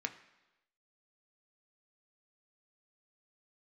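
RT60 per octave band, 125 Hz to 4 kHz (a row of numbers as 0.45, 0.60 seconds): 0.90, 0.95, 1.0, 1.0, 1.0, 1.0 seconds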